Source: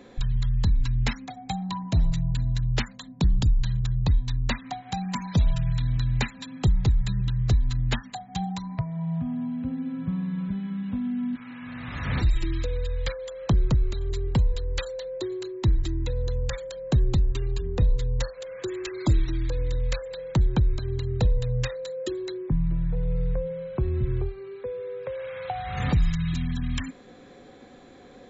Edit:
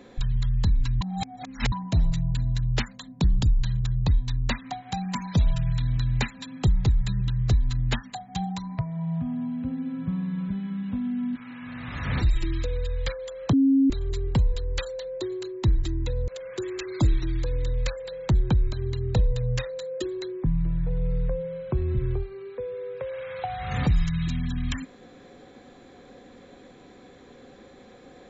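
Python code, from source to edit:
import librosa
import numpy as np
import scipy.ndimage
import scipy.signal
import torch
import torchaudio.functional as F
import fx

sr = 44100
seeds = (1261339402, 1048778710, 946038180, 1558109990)

y = fx.edit(x, sr, fx.reverse_span(start_s=1.01, length_s=0.71),
    fx.bleep(start_s=13.53, length_s=0.37, hz=271.0, db=-15.5),
    fx.cut(start_s=16.28, length_s=2.06), tone=tone)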